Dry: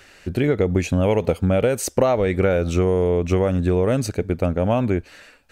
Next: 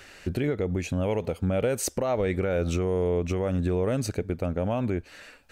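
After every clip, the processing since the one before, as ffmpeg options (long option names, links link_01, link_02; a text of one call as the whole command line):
ffmpeg -i in.wav -af "alimiter=limit=-16.5dB:level=0:latency=1:release=399" out.wav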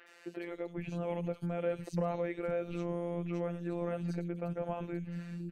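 ffmpeg -i in.wav -filter_complex "[0:a]acrossover=split=3500[link_01][link_02];[link_02]acompressor=threshold=-58dB:ratio=4:attack=1:release=60[link_03];[link_01][link_03]amix=inputs=2:normalize=0,acrossover=split=270|3200[link_04][link_05][link_06];[link_06]adelay=70[link_07];[link_04]adelay=510[link_08];[link_08][link_05][link_07]amix=inputs=3:normalize=0,afftfilt=real='hypot(re,im)*cos(PI*b)':imag='0':win_size=1024:overlap=0.75,volume=-4dB" out.wav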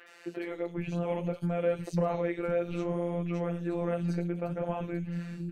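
ffmpeg -i in.wav -af "flanger=delay=9.8:depth=8.4:regen=-53:speed=0.61:shape=sinusoidal,volume=8.5dB" out.wav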